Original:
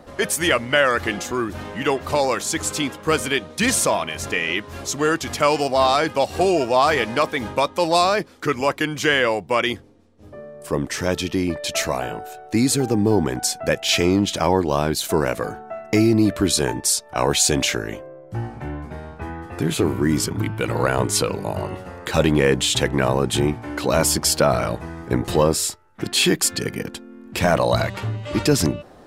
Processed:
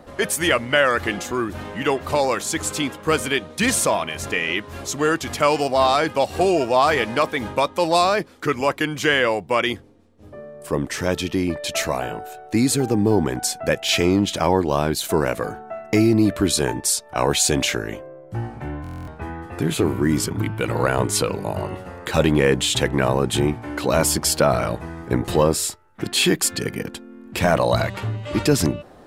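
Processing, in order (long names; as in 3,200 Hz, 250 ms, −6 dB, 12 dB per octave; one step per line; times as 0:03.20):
parametric band 5,500 Hz −2.5 dB
buffer that repeats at 0:18.82, samples 1,024, times 10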